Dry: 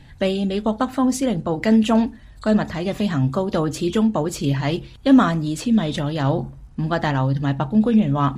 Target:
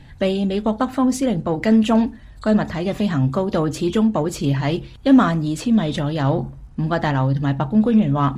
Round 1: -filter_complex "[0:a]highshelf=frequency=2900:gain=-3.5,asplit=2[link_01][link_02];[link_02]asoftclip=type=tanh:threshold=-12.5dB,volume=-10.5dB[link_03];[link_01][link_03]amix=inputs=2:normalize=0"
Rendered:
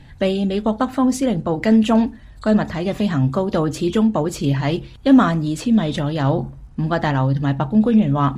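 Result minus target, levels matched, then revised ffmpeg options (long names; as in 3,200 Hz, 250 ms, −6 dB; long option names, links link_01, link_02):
soft clipping: distortion −8 dB
-filter_complex "[0:a]highshelf=frequency=2900:gain=-3.5,asplit=2[link_01][link_02];[link_02]asoftclip=type=tanh:threshold=-21.5dB,volume=-10.5dB[link_03];[link_01][link_03]amix=inputs=2:normalize=0"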